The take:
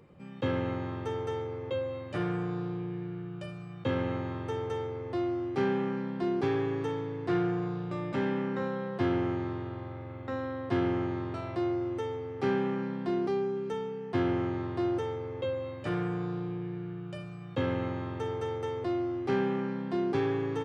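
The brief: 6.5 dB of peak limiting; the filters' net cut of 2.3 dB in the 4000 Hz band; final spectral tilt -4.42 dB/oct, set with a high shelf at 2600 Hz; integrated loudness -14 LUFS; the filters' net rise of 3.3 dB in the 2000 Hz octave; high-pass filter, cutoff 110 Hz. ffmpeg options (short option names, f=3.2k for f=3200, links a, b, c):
-af "highpass=110,equalizer=f=2k:t=o:g=4.5,highshelf=f=2.6k:g=3.5,equalizer=f=4k:t=o:g=-8.5,volume=20dB,alimiter=limit=-3.5dB:level=0:latency=1"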